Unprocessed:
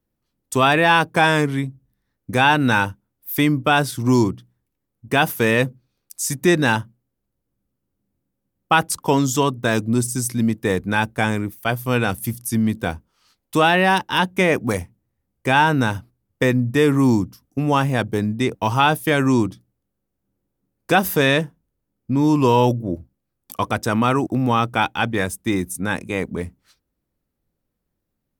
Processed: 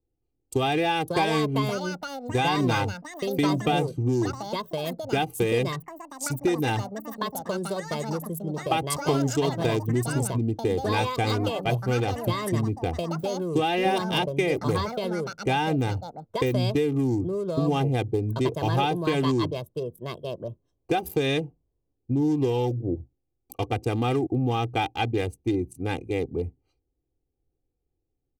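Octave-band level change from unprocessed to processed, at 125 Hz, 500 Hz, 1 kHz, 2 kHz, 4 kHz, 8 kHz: −3.5, −4.0, −7.5, −12.0, −6.0, −8.5 decibels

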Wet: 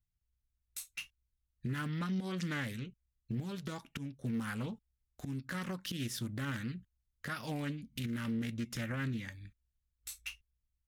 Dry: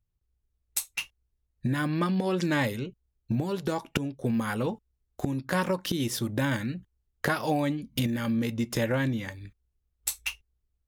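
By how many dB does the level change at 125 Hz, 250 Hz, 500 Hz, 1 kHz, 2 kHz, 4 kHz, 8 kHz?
−8.0, −9.5, −16.0, −13.0, −9.5, −9.0, −11.5 decibels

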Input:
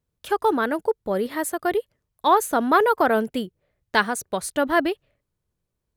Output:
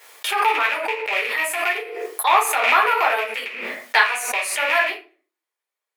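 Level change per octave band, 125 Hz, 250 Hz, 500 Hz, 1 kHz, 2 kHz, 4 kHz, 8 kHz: can't be measured, −17.5 dB, −4.5 dB, +2.5 dB, +8.5 dB, +8.0 dB, +5.5 dB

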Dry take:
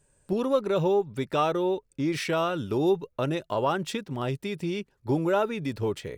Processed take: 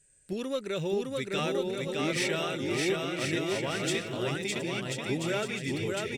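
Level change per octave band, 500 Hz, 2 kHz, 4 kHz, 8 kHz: −5.0, +4.0, +4.0, +7.5 decibels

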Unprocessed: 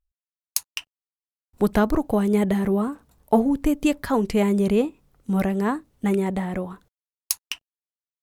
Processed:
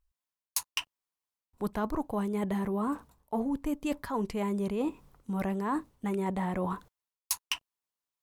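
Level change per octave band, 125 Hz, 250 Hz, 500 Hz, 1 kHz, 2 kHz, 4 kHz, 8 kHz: −9.5, −10.0, −11.0, −6.5, −8.0, −3.5, −6.5 decibels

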